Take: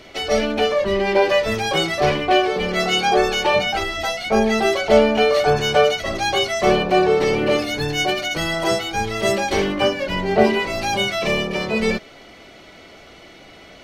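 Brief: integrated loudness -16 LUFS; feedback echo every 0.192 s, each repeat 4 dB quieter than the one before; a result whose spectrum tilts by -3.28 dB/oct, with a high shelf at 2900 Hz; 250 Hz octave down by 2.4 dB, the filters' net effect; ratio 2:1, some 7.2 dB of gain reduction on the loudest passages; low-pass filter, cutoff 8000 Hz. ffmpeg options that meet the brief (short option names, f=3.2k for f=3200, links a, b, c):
-af "lowpass=8k,equalizer=f=250:t=o:g=-3.5,highshelf=f=2.9k:g=4,acompressor=threshold=-23dB:ratio=2,aecho=1:1:192|384|576|768|960|1152|1344|1536|1728:0.631|0.398|0.25|0.158|0.0994|0.0626|0.0394|0.0249|0.0157,volume=5dB"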